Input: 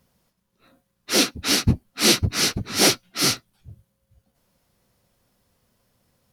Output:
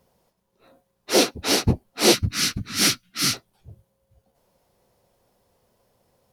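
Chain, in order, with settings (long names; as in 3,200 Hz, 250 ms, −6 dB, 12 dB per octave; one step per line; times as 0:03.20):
flat-topped bell 590 Hz +8 dB, from 0:02.13 −10.5 dB, from 0:03.33 +8 dB
level −1.5 dB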